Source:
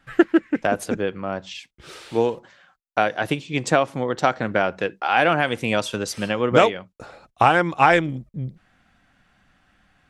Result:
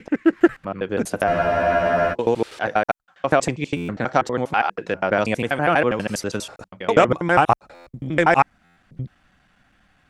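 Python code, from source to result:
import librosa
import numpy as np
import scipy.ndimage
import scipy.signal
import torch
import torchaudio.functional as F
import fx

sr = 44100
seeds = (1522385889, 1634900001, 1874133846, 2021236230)

y = fx.block_reorder(x, sr, ms=81.0, group=8)
y = fx.dynamic_eq(y, sr, hz=3300.0, q=1.8, threshold_db=-40.0, ratio=4.0, max_db=-6)
y = fx.buffer_glitch(y, sr, at_s=(1.27, 3.76, 7.74, 8.64), block=512, repeats=10)
y = fx.spec_freeze(y, sr, seeds[0], at_s=1.31, hold_s=0.82)
y = F.gain(torch.from_numpy(y), 1.0).numpy()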